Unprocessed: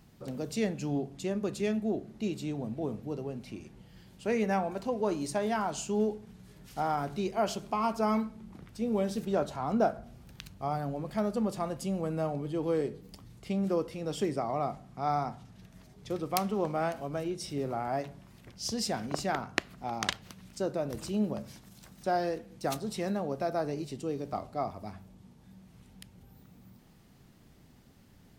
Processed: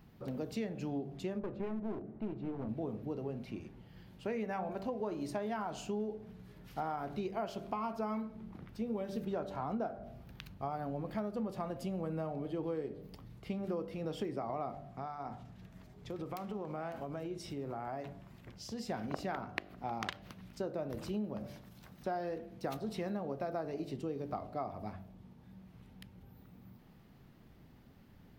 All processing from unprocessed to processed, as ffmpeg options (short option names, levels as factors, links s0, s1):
-filter_complex "[0:a]asettb=1/sr,asplit=3[s0][s1][s2];[s0]atrim=end=1.394[s3];[s1]atrim=start=1.39:end=2.69,asetpts=PTS-STARTPTS,afade=t=in:d=0.004:c=qsin,afade=t=out:st=1.296:d=0.004:c=qsin,lowpass=1400,aeval=exprs='clip(val(0),-1,0.0141)':c=same[s4];[s2]atrim=start=2.686[s5];[s3][s4]acrossfade=d=0.004:c1=hsin:c2=qsin[s6];[s6][s5]acrossfade=d=0.004:c1=qsin:c2=hsin,asettb=1/sr,asplit=3[s7][s8][s9];[s7]atrim=end=14.894[s10];[s8]atrim=start=14.89:end=18.9,asetpts=PTS-STARTPTS,afade=t=in:d=0.004:c=qsin,afade=t=out:st=4.006:d=0.004:c=qsin,equalizer=f=7400:t=o:w=0.29:g=6,acompressor=threshold=0.0178:ratio=10:attack=3.2:release=140:knee=1:detection=peak[s11];[s9]atrim=start=18.896[s12];[s10][s11]acrossfade=d=0.004:c1=hsin:c2=qsin[s13];[s13][s12]acrossfade=d=0.004:c1=qsin:c2=hsin,equalizer=f=8000:t=o:w=1.5:g=-13.5,bandreject=f=48.8:t=h:w=4,bandreject=f=97.6:t=h:w=4,bandreject=f=146.4:t=h:w=4,bandreject=f=195.2:t=h:w=4,bandreject=f=244:t=h:w=4,bandreject=f=292.8:t=h:w=4,bandreject=f=341.6:t=h:w=4,bandreject=f=390.4:t=h:w=4,bandreject=f=439.2:t=h:w=4,bandreject=f=488:t=h:w=4,bandreject=f=536.8:t=h:w=4,bandreject=f=585.6:t=h:w=4,bandreject=f=634.4:t=h:w=4,bandreject=f=683.2:t=h:w=4,bandreject=f=732:t=h:w=4,bandreject=f=780.8:t=h:w=4,acompressor=threshold=0.02:ratio=6"